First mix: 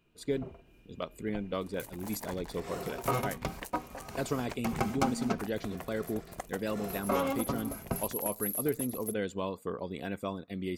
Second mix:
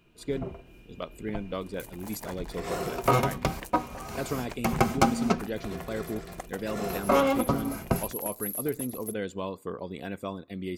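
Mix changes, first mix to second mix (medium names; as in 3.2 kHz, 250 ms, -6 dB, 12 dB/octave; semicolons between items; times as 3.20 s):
first sound +6.5 dB; reverb: on, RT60 0.50 s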